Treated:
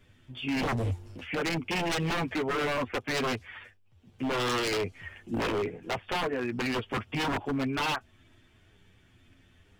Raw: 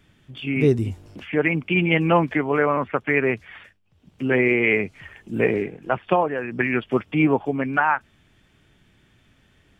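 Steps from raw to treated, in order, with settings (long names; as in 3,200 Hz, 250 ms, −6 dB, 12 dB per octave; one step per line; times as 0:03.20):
multi-voice chorus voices 6, 0.25 Hz, delay 10 ms, depth 2.2 ms
dynamic equaliser 1,700 Hz, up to −5 dB, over −36 dBFS, Q 1.3
wave folding −24 dBFS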